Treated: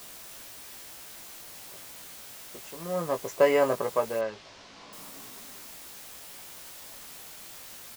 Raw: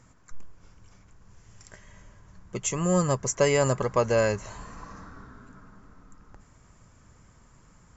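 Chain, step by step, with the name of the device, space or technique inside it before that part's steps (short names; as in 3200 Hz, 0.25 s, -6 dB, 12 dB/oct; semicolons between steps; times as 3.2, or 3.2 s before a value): Wiener smoothing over 25 samples; shortwave radio (BPF 280–2800 Hz; tremolo 0.57 Hz, depth 75%; white noise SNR 11 dB); 4.19–4.93 LPF 5300 Hz 24 dB/oct; bell 660 Hz +2.5 dB 0.88 oct; doubler 18 ms -5.5 dB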